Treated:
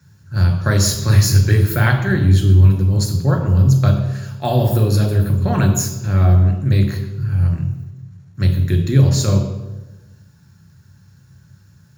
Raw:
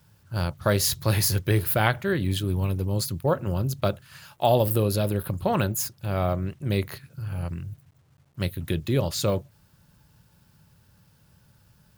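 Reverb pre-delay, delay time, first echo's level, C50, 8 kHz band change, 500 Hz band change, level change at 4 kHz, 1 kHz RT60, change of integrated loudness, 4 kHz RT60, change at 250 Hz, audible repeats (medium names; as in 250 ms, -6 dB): 3 ms, no echo, no echo, 8.0 dB, +7.0 dB, +1.5 dB, +4.5 dB, 0.95 s, +10.0 dB, 0.80 s, +9.0 dB, no echo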